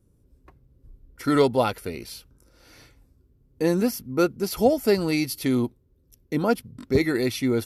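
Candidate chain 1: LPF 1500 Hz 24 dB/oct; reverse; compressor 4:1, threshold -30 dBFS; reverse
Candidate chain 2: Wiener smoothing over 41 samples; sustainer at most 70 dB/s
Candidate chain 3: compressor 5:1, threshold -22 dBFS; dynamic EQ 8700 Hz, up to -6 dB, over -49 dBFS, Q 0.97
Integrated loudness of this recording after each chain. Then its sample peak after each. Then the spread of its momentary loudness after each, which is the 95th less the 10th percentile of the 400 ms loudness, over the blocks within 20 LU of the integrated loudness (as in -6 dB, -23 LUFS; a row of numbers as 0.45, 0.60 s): -34.0, -24.0, -28.5 LUFS; -19.5, -6.5, -13.5 dBFS; 7, 11, 8 LU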